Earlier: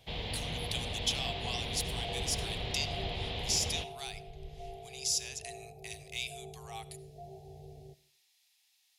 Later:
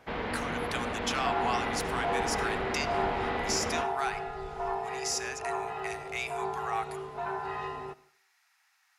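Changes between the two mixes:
first sound -3.5 dB; second sound: remove steep low-pass 720 Hz 72 dB/octave; master: remove FFT filter 140 Hz 0 dB, 240 Hz -15 dB, 440 Hz -12 dB, 710 Hz -10 dB, 1.4 kHz -24 dB, 3.4 kHz +6 dB, 5.9 kHz 0 dB, 9.8 kHz +4 dB

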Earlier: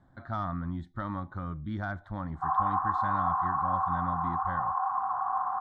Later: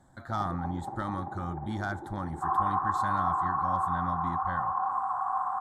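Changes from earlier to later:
speech: remove distance through air 250 m; first sound: unmuted

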